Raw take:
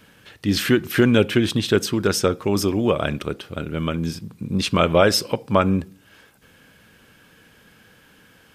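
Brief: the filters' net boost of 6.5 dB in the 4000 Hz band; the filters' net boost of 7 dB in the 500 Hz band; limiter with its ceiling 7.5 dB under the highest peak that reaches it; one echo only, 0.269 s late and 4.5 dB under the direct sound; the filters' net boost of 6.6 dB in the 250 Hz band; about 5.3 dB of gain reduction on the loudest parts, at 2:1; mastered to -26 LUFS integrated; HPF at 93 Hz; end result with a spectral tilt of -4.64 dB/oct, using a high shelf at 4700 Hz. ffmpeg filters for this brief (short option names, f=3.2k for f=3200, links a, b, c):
-af "highpass=93,equalizer=f=250:t=o:g=6.5,equalizer=f=500:t=o:g=6.5,equalizer=f=4k:t=o:g=5.5,highshelf=f=4.7k:g=5.5,acompressor=threshold=-14dB:ratio=2,alimiter=limit=-7.5dB:level=0:latency=1,aecho=1:1:269:0.596,volume=-7.5dB"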